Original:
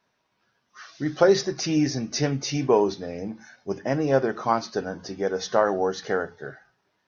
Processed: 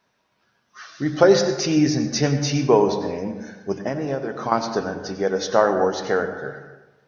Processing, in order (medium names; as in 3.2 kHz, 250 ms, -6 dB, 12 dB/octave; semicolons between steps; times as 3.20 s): 3.87–4.52 s: compression 12:1, threshold -26 dBFS, peak gain reduction 12.5 dB; on a send: reverberation RT60 1.1 s, pre-delay 83 ms, DRR 8 dB; on the sum: trim +3.5 dB